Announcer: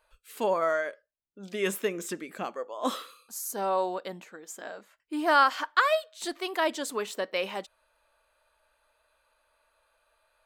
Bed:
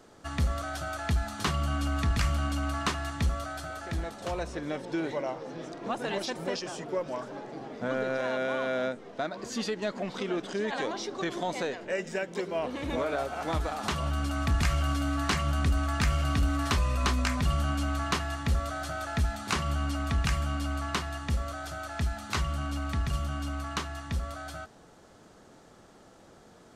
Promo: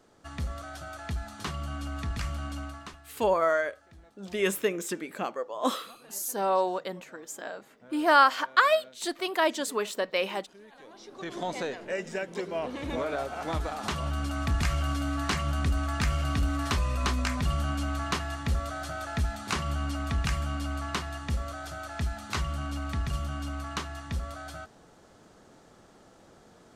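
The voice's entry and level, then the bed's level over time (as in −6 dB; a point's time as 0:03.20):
2.80 s, +2.0 dB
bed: 0:02.61 −6 dB
0:03.06 −21 dB
0:10.78 −21 dB
0:11.41 −1 dB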